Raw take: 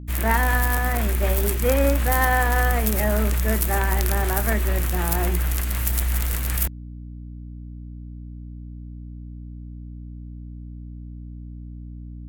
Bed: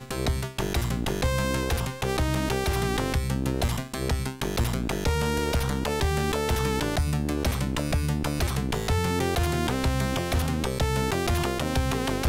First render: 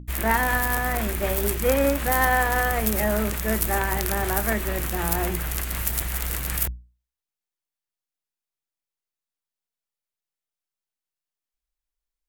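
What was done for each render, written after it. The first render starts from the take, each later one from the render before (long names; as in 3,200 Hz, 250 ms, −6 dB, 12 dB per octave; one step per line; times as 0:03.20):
mains-hum notches 60/120/180/240/300 Hz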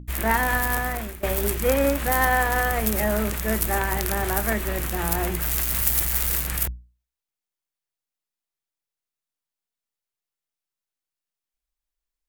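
0:00.78–0:01.23: fade out, to −17 dB
0:05.42–0:06.43: spike at every zero crossing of −20 dBFS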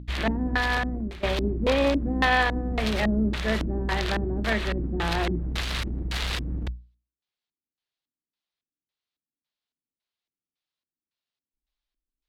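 asymmetric clip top −22 dBFS
auto-filter low-pass square 1.8 Hz 280–3,900 Hz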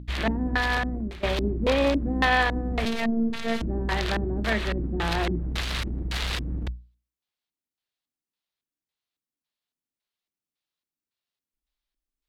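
0:02.85–0:03.62: phases set to zero 228 Hz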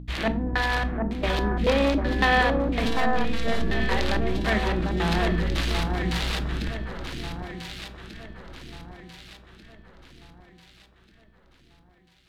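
on a send: delay that swaps between a low-pass and a high-pass 745 ms, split 1,500 Hz, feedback 63%, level −4 dB
on the sum: rectangular room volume 400 cubic metres, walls furnished, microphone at 0.66 metres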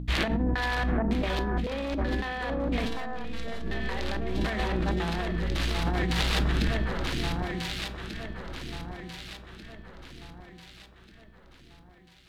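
compressor whose output falls as the input rises −28 dBFS, ratio −1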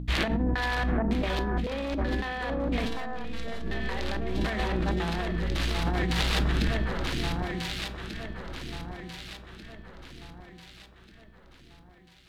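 no processing that can be heard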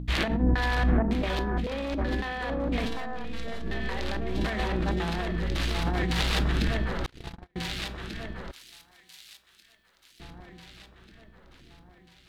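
0:00.42–0:01.03: low-shelf EQ 320 Hz +5.5 dB
0:07.06–0:07.56: noise gate −27 dBFS, range −40 dB
0:08.51–0:10.20: first-order pre-emphasis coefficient 0.97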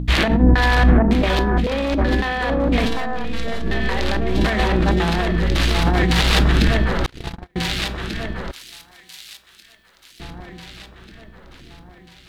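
level +10.5 dB
brickwall limiter −3 dBFS, peak gain reduction 2.5 dB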